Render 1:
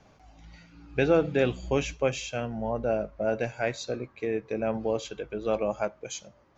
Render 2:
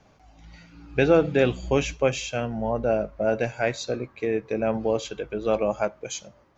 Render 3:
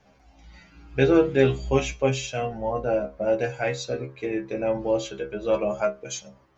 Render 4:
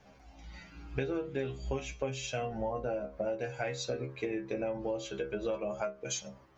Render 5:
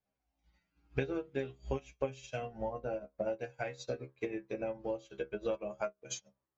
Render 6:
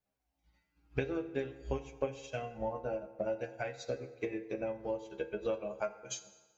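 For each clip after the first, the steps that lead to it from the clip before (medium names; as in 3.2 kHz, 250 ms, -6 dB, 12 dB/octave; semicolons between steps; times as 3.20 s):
level rider gain up to 4 dB
inharmonic resonator 65 Hz, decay 0.3 s, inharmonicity 0.002; trim +7 dB
compression 12:1, threshold -31 dBFS, peak gain reduction 18.5 dB
upward expansion 2.5:1, over -51 dBFS; trim +2 dB
FDN reverb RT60 1.4 s, low-frequency decay 0.85×, high-frequency decay 0.75×, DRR 10.5 dB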